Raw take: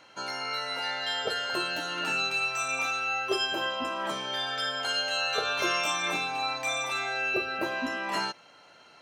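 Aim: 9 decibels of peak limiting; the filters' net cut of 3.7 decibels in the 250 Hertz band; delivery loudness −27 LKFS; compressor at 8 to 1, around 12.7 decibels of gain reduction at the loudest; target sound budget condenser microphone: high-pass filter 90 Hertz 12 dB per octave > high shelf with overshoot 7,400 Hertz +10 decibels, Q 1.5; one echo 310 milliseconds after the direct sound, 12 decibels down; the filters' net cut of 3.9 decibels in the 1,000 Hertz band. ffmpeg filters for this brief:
ffmpeg -i in.wav -af "equalizer=frequency=250:width_type=o:gain=-5,equalizer=frequency=1000:width_type=o:gain=-5,acompressor=threshold=-39dB:ratio=8,alimiter=level_in=13.5dB:limit=-24dB:level=0:latency=1,volume=-13.5dB,highpass=90,highshelf=frequency=7400:width_type=q:width=1.5:gain=10,aecho=1:1:310:0.251,volume=17.5dB" out.wav

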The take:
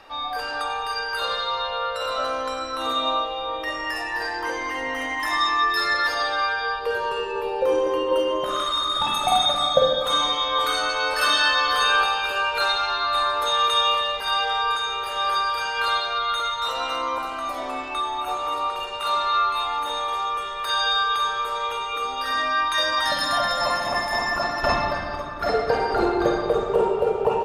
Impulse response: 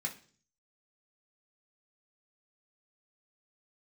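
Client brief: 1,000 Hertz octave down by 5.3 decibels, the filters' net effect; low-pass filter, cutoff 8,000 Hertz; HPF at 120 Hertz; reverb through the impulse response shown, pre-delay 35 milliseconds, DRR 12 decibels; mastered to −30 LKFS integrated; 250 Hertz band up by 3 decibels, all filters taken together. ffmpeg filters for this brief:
-filter_complex "[0:a]highpass=120,lowpass=8000,equalizer=frequency=250:width_type=o:gain=5.5,equalizer=frequency=1000:width_type=o:gain=-7,asplit=2[link_01][link_02];[1:a]atrim=start_sample=2205,adelay=35[link_03];[link_02][link_03]afir=irnorm=-1:irlink=0,volume=-13dB[link_04];[link_01][link_04]amix=inputs=2:normalize=0,volume=-6dB"

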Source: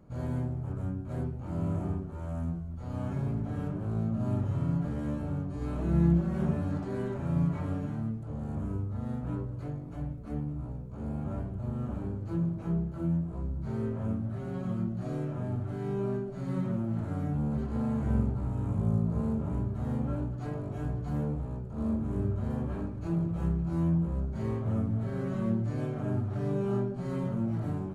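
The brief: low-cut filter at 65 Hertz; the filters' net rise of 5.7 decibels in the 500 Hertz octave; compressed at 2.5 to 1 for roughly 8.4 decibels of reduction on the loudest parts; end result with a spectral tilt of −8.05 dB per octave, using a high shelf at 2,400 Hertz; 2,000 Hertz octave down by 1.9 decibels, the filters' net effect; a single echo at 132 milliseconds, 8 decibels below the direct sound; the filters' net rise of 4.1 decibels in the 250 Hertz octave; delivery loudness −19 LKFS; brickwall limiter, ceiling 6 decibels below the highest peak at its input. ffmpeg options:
ffmpeg -i in.wav -af "highpass=65,equalizer=frequency=250:width_type=o:gain=4.5,equalizer=frequency=500:width_type=o:gain=6,equalizer=frequency=2000:width_type=o:gain=-5.5,highshelf=frequency=2400:gain=5,acompressor=threshold=-30dB:ratio=2.5,alimiter=level_in=1.5dB:limit=-24dB:level=0:latency=1,volume=-1.5dB,aecho=1:1:132:0.398,volume=15dB" out.wav

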